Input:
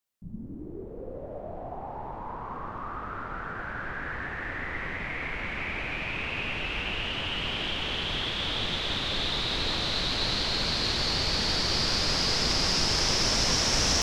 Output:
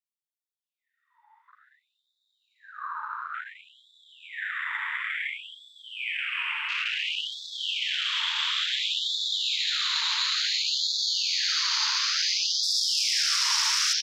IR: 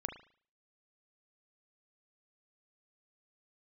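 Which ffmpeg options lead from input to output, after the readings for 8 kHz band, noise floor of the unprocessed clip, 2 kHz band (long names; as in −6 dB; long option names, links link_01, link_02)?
+2.5 dB, −40 dBFS, +1.0 dB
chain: -filter_complex "[0:a]asplit=2[link_01][link_02];[link_02]alimiter=limit=-20.5dB:level=0:latency=1,volume=0dB[link_03];[link_01][link_03]amix=inputs=2:normalize=0,afwtdn=0.0355,asplit=2[link_04][link_05];[link_05]adelay=330,highpass=300,lowpass=3400,asoftclip=type=hard:threshold=-17.5dB,volume=-9dB[link_06];[link_04][link_06]amix=inputs=2:normalize=0,afftfilt=real='re*gte(b*sr/1024,840*pow(3400/840,0.5+0.5*sin(2*PI*0.57*pts/sr)))':imag='im*gte(b*sr/1024,840*pow(3400/840,0.5+0.5*sin(2*PI*0.57*pts/sr)))':win_size=1024:overlap=0.75,volume=-1.5dB"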